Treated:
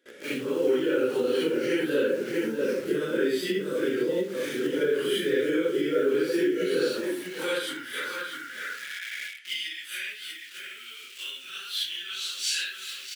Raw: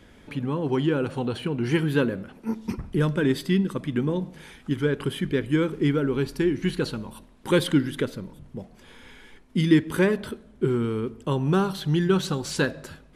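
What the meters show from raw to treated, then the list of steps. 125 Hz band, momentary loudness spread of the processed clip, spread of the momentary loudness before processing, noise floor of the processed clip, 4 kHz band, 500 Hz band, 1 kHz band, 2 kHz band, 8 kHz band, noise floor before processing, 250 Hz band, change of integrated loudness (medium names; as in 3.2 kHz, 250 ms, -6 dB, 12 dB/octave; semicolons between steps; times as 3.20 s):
-20.0 dB, 11 LU, 14 LU, -45 dBFS, +4.0 dB, +1.0 dB, -6.0 dB, +1.0 dB, +3.5 dB, -52 dBFS, -6.5 dB, -3.0 dB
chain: phase randomisation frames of 200 ms; gate with hold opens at -43 dBFS; echo from a far wall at 110 m, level -7 dB; in parallel at -4 dB: bit crusher 7-bit; on the sum: compression 6:1, threshold -27 dBFS, peak gain reduction 18 dB; high-pass sweep 470 Hz -> 2.7 kHz, 6.81–9.64 s; high-order bell 850 Hz -14.5 dB 1 oct; band-stop 460 Hz, Q 12; trim +5.5 dB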